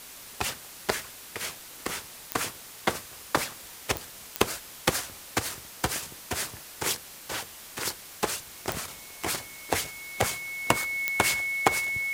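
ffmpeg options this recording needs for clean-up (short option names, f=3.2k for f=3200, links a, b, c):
-af "adeclick=t=4,bandreject=f=2.2k:w=30,afftdn=nr=30:nf=-46"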